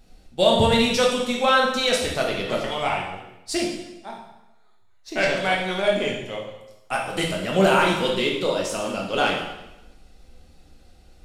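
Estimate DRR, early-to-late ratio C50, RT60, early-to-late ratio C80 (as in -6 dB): -2.5 dB, 3.0 dB, 0.95 s, 6.5 dB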